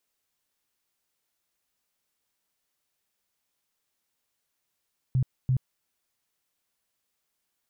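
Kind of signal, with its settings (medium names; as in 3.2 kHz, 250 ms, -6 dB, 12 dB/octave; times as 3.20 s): tone bursts 129 Hz, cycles 10, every 0.34 s, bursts 2, -20 dBFS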